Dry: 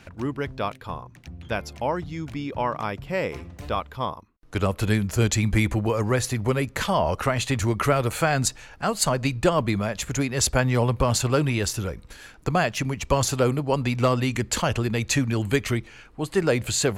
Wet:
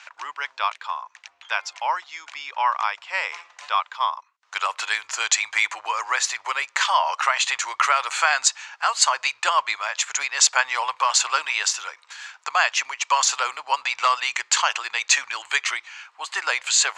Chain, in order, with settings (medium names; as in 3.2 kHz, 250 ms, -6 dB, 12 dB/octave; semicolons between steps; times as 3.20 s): elliptic band-pass 940–7200 Hz, stop band 60 dB; trim +8 dB